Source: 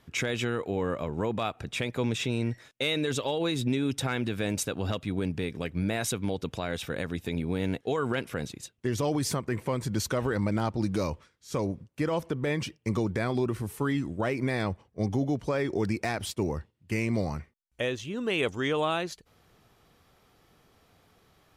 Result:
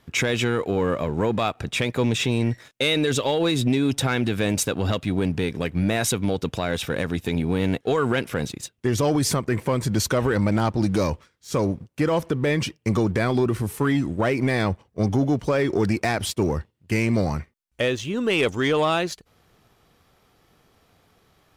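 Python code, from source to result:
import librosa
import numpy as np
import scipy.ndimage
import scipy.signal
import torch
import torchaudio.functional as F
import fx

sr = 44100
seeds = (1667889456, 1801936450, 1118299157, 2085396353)

y = fx.leveller(x, sr, passes=1)
y = y * librosa.db_to_amplitude(4.0)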